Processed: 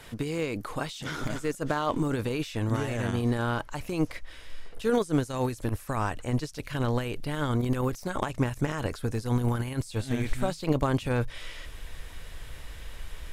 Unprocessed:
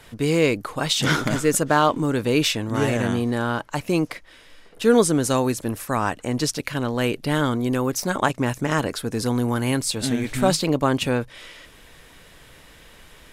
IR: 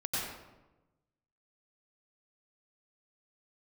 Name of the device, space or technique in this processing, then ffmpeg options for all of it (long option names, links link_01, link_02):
de-esser from a sidechain: -filter_complex "[0:a]asubboost=boost=5.5:cutoff=84,asplit=2[link_01][link_02];[link_02]highpass=5800,apad=whole_len=587514[link_03];[link_01][link_03]sidechaincompress=threshold=-48dB:ratio=4:attack=0.94:release=33"